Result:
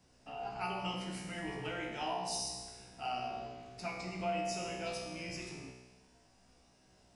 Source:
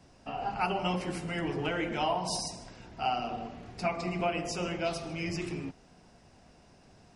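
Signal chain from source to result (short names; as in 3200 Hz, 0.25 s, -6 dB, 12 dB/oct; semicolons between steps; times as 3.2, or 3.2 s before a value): high shelf 3600 Hz +7.5 dB; resonator 63 Hz, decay 1.2 s, harmonics all, mix 90%; gain +4 dB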